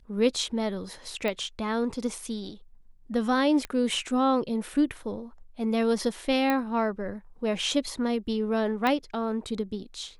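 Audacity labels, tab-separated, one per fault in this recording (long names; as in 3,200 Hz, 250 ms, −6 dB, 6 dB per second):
1.280000	1.280000	click −17 dBFS
3.650000	3.650000	click −18 dBFS
6.500000	6.500000	click −13 dBFS
8.870000	8.870000	click −14 dBFS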